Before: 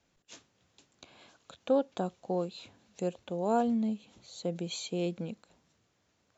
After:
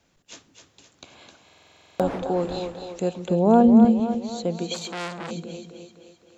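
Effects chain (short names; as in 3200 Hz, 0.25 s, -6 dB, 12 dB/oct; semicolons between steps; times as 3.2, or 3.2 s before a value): 1.54–2.59 wind noise 620 Hz -40 dBFS; 3.3–3.85 tilt -3.5 dB/oct; on a send: split-band echo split 330 Hz, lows 0.148 s, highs 0.26 s, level -7 dB; on the sum: stuck buffer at 1.44, samples 2048, times 11; 4.74–5.31 core saturation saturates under 2600 Hz; gain +7.5 dB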